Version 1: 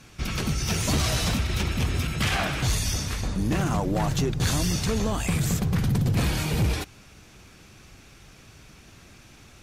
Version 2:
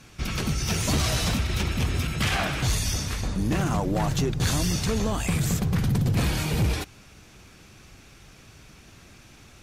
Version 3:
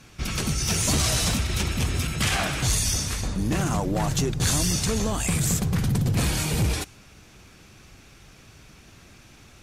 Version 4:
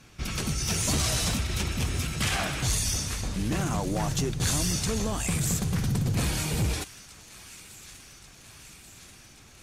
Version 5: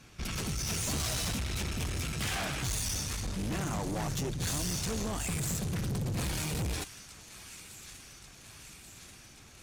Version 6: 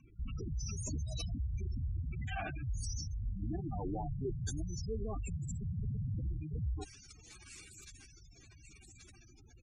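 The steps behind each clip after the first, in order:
nothing audible
dynamic EQ 8600 Hz, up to +8 dB, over -47 dBFS, Q 0.82
thin delay 1.135 s, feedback 69%, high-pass 1400 Hz, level -16 dB; gain -3.5 dB
tube stage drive 30 dB, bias 0.45
spectral gate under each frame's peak -10 dB strong; comb 2.6 ms, depth 50%; gain -2.5 dB

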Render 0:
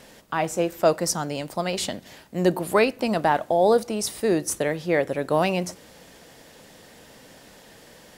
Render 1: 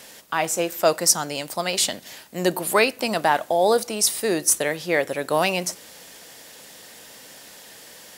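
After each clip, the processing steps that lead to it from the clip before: tilt +2.5 dB/oct; gain +2 dB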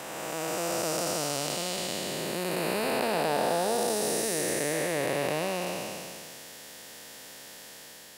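time blur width 0.807 s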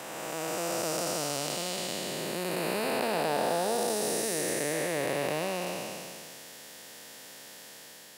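block floating point 7-bit; HPF 94 Hz; gain -1.5 dB

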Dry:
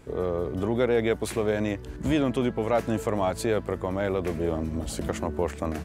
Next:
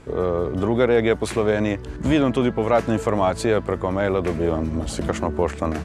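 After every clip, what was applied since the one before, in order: Bessel low-pass 8500 Hz, order 4; bell 1200 Hz +2.5 dB; gain +5.5 dB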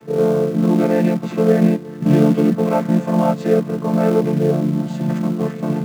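chord vocoder minor triad, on D3; in parallel at -6.5 dB: companded quantiser 4-bit; on the sum: harmonic-percussive split percussive -12 dB; gain +4.5 dB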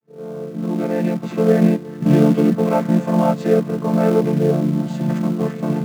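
opening faded in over 1.57 s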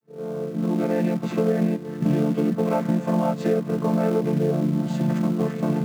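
compressor, threshold -18 dBFS, peak gain reduction 9.5 dB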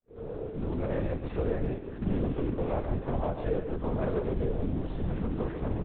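doubler 21 ms -12 dB; LPC vocoder at 8 kHz whisper; speakerphone echo 0.14 s, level -8 dB; gain -8 dB

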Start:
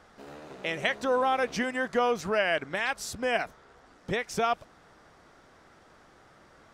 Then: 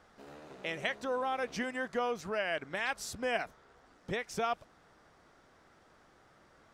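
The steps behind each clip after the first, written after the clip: vocal rider 0.5 s; gain -6 dB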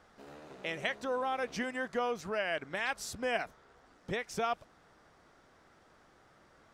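nothing audible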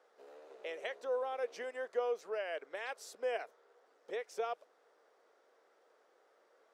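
ladder high-pass 410 Hz, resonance 60%; gain +1 dB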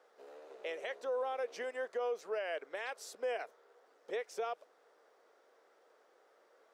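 limiter -31 dBFS, peak gain reduction 7.5 dB; gain +2 dB

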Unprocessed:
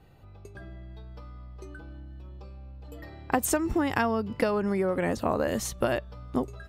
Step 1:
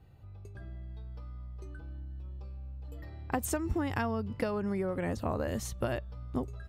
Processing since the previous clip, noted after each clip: bell 82 Hz +11 dB 1.6 oct; gain -7.5 dB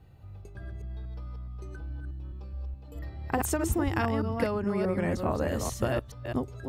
reverse delay 0.211 s, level -4 dB; gain +3 dB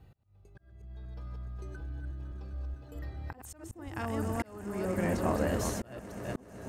swelling echo 0.127 s, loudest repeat 8, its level -17.5 dB; auto swell 0.681 s; gain -1.5 dB

